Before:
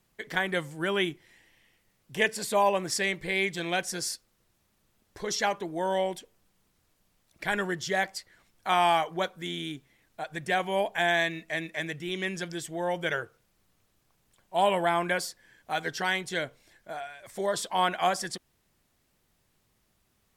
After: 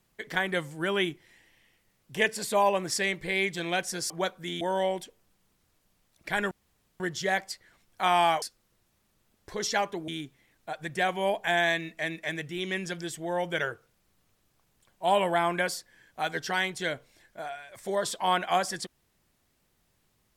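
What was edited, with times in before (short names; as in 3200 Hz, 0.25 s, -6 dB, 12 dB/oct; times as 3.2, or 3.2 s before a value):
4.1–5.76 swap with 9.08–9.59
7.66 insert room tone 0.49 s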